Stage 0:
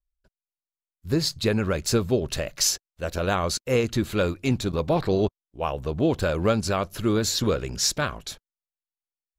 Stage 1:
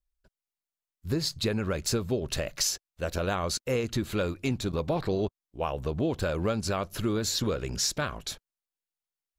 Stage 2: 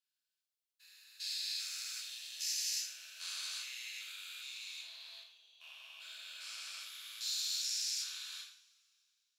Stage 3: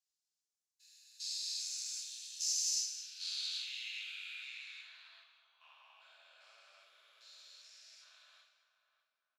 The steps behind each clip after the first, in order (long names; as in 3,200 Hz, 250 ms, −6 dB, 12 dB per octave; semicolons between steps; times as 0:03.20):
downward compressor 2.5 to 1, threshold −27 dBFS, peak gain reduction 7.5 dB
spectrum averaged block by block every 400 ms; four-pole ladder high-pass 2,200 Hz, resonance 25%; convolution reverb, pre-delay 3 ms, DRR −5 dB
feedback echo with a band-pass in the loop 595 ms, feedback 41%, band-pass 890 Hz, level −11 dB; band-pass filter sweep 6,400 Hz → 560 Hz, 0:02.71–0:06.66; single-tap delay 209 ms −13 dB; level +5 dB